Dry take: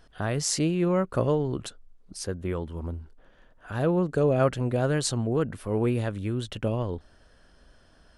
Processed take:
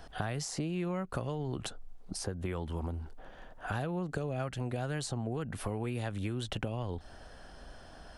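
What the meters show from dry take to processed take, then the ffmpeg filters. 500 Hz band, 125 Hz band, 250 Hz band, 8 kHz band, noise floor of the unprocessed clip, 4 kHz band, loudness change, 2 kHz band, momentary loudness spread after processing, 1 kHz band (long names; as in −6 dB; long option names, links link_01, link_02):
−12.0 dB, −7.5 dB, −9.5 dB, −10.0 dB, −58 dBFS, −7.0 dB, −9.5 dB, −4.5 dB, 17 LU, −6.5 dB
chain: -filter_complex "[0:a]acompressor=threshold=-32dB:ratio=6,equalizer=frequency=770:width_type=o:width=0.45:gain=8.5,acrossover=split=230|1500[link_01][link_02][link_03];[link_01]acompressor=threshold=-42dB:ratio=4[link_04];[link_02]acompressor=threshold=-45dB:ratio=4[link_05];[link_03]acompressor=threshold=-46dB:ratio=4[link_06];[link_04][link_05][link_06]amix=inputs=3:normalize=0,volume=6dB"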